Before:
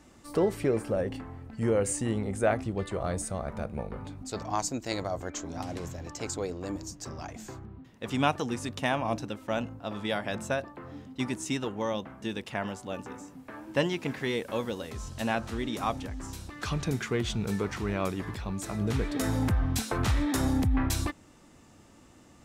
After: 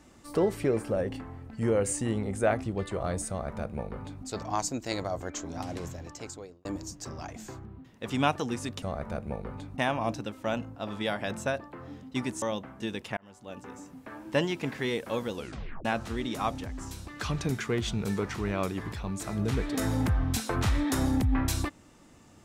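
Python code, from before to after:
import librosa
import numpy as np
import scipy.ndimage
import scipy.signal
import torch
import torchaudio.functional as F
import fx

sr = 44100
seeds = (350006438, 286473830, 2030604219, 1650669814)

y = fx.edit(x, sr, fx.duplicate(start_s=3.29, length_s=0.96, to_s=8.82),
    fx.fade_out_span(start_s=5.87, length_s=0.78),
    fx.cut(start_s=11.46, length_s=0.38),
    fx.fade_in_span(start_s=12.59, length_s=0.69),
    fx.tape_stop(start_s=14.76, length_s=0.51), tone=tone)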